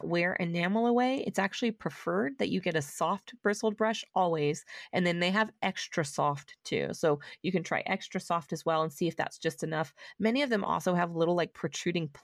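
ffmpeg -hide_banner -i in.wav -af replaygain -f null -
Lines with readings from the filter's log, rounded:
track_gain = +10.9 dB
track_peak = 0.105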